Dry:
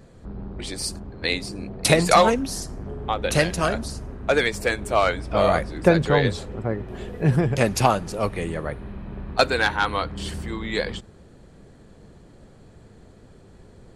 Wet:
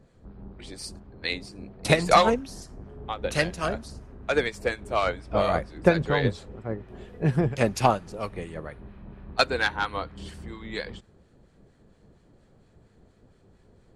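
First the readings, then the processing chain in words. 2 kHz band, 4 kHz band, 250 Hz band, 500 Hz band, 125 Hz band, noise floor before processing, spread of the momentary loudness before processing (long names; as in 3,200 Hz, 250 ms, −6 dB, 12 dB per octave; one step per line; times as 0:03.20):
−4.0 dB, −4.5 dB, −4.5 dB, −4.0 dB, −5.0 dB, −50 dBFS, 15 LU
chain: two-band tremolo in antiphase 4.3 Hz, depth 50%, crossover 1,100 Hz
high-shelf EQ 10,000 Hz −8 dB
expander for the loud parts 1.5 to 1, over −31 dBFS
level +1.5 dB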